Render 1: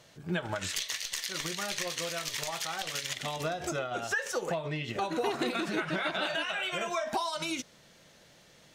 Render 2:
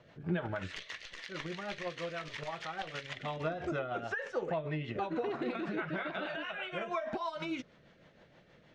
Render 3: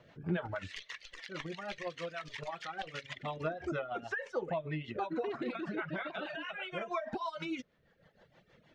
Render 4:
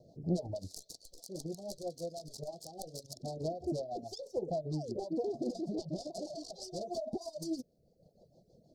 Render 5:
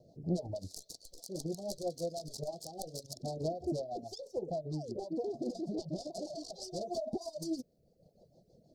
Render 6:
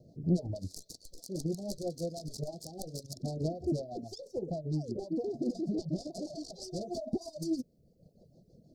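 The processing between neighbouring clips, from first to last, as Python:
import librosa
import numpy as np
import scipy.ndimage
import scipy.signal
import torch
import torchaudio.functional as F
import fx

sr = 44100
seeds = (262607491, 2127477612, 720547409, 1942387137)

y1 = fx.rotary(x, sr, hz=6.3)
y1 = fx.rider(y1, sr, range_db=10, speed_s=0.5)
y1 = scipy.signal.sosfilt(scipy.signal.butter(2, 2200.0, 'lowpass', fs=sr, output='sos'), y1)
y2 = fx.dereverb_blind(y1, sr, rt60_s=1.3)
y3 = fx.self_delay(y2, sr, depth_ms=0.36)
y3 = fx.spec_paint(y3, sr, seeds[0], shape='fall', start_s=4.58, length_s=0.37, low_hz=320.0, high_hz=2400.0, level_db=-45.0)
y3 = scipy.signal.sosfilt(scipy.signal.cheby1(4, 1.0, [700.0, 4500.0], 'bandstop', fs=sr, output='sos'), y3)
y3 = y3 * librosa.db_to_amplitude(2.5)
y4 = fx.rider(y3, sr, range_db=4, speed_s=2.0)
y5 = fx.curve_eq(y4, sr, hz=(260.0, 1600.0, 4700.0), db=(0, -17, -6))
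y5 = y5 * librosa.db_to_amplitude(6.0)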